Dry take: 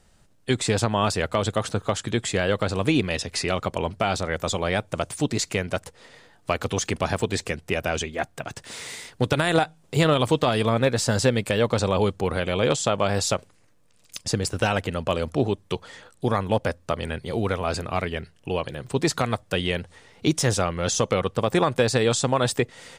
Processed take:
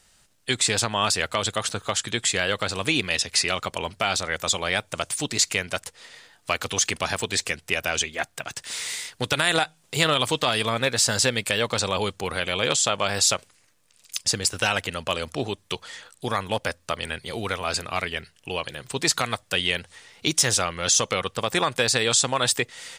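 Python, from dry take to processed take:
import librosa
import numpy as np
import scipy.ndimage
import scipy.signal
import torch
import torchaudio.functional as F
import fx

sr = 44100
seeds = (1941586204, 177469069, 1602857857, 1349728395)

y = fx.tilt_shelf(x, sr, db=-7.5, hz=1100.0)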